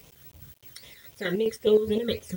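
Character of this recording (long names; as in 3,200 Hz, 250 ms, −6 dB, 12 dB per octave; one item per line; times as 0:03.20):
phaser sweep stages 12, 3.7 Hz, lowest notch 800–1,600 Hz
chopped level 4.8 Hz, depth 60%, duty 50%
a quantiser's noise floor 10 bits, dither none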